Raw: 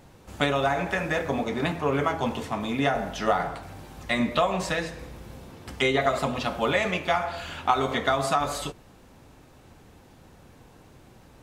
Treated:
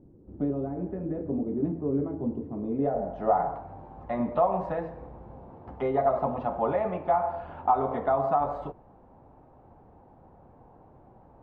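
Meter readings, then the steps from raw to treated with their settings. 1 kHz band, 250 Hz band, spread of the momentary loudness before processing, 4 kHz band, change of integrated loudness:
-1.0 dB, -1.0 dB, 15 LU, under -30 dB, -2.5 dB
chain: soft clip -12.5 dBFS, distortion -21 dB; low-pass sweep 330 Hz -> 830 Hz, 2.47–3.37; gain -4 dB

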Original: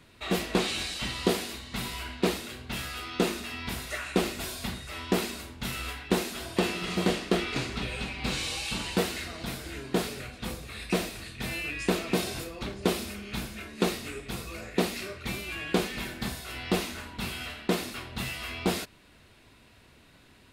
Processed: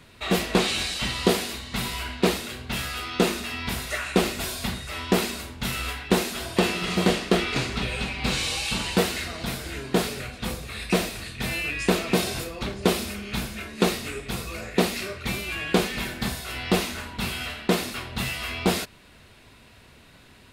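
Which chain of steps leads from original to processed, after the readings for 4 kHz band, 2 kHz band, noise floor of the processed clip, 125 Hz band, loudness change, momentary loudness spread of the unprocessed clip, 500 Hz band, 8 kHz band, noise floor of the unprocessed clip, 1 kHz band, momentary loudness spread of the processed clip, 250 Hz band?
+5.5 dB, +5.5 dB, -52 dBFS, +5.5 dB, +5.0 dB, 8 LU, +5.0 dB, +5.5 dB, -57 dBFS, +5.5 dB, 8 LU, +4.5 dB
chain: bell 310 Hz -4 dB 0.34 oct; gain +5.5 dB

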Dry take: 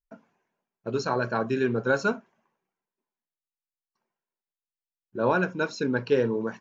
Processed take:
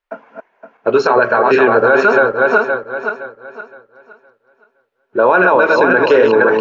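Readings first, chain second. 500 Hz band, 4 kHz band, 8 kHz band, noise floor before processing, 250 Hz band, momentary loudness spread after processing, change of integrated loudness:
+16.0 dB, +11.0 dB, n/a, under -85 dBFS, +9.5 dB, 12 LU, +14.5 dB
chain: regenerating reverse delay 0.258 s, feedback 54%, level -4 dB; three-band isolator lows -21 dB, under 380 Hz, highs -22 dB, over 3000 Hz; maximiser +23 dB; gain -1 dB

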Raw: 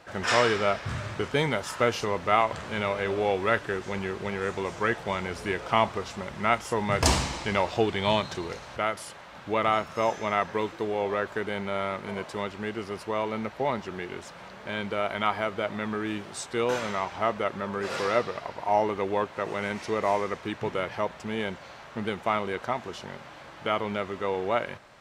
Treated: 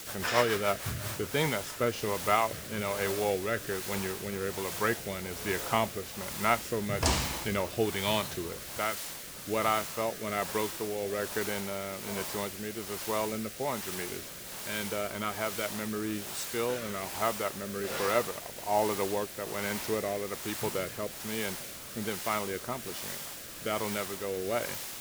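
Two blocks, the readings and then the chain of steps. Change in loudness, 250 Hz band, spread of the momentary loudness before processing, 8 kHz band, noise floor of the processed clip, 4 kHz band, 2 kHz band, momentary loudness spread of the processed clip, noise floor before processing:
-3.5 dB, -3.5 dB, 10 LU, +4.0 dB, -43 dBFS, -1.5 dB, -4.0 dB, 8 LU, -46 dBFS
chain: requantised 6-bit, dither triangular; rotary speaker horn 7 Hz, later 1.2 Hz, at 0.54; gain -2 dB

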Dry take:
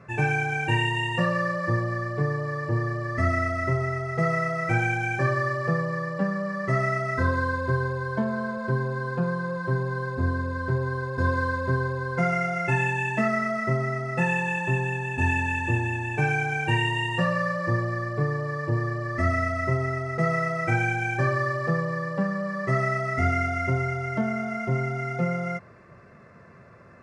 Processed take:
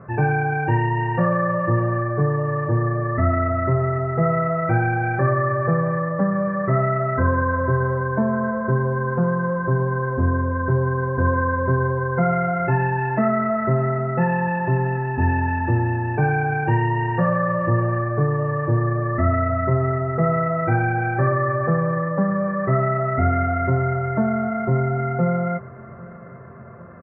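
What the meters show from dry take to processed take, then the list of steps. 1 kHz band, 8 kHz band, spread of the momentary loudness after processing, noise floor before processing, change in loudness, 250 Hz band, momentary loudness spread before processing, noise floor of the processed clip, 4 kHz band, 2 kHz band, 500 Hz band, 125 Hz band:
+6.0 dB, under -30 dB, 2 LU, -49 dBFS, +5.0 dB, +6.0 dB, 4 LU, -38 dBFS, under -15 dB, -0.5 dB, +6.5 dB, +6.0 dB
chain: LPF 1500 Hz 24 dB/oct; in parallel at -1 dB: limiter -21.5 dBFS, peak gain reduction 8.5 dB; on the sum: feedback echo 0.799 s, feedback 56%, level -21 dB; gain +2 dB

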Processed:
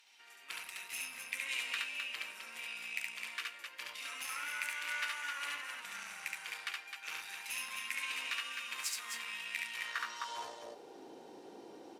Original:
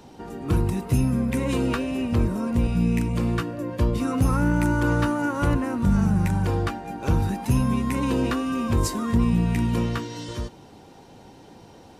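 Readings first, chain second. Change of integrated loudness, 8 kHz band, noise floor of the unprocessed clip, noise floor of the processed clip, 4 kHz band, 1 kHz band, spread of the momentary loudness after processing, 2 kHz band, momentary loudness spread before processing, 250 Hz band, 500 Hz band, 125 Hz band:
-15.5 dB, -5.0 dB, -48 dBFS, -55 dBFS, -1.0 dB, -15.0 dB, 14 LU, -3.5 dB, 7 LU, -39.0 dB, -26.0 dB, under -40 dB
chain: added harmonics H 3 -20 dB, 6 -24 dB, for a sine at -12 dBFS; loudspeakers at several distances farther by 24 m -2 dB, 89 m -6 dB; high-pass sweep 2300 Hz -> 350 Hz, 9.72–11.01; gain -7 dB

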